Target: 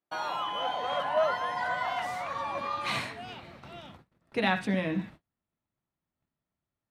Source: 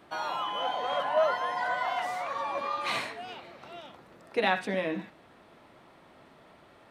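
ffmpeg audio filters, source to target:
-af "agate=range=-36dB:threshold=-50dB:ratio=16:detection=peak,asubboost=boost=5.5:cutoff=190"

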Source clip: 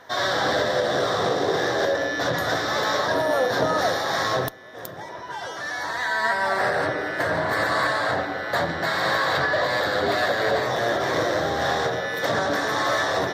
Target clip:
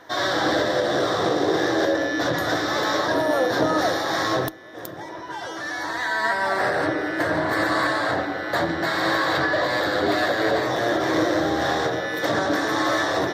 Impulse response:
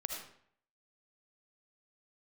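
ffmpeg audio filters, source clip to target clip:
-af "equalizer=f=320:w=7:g=13"

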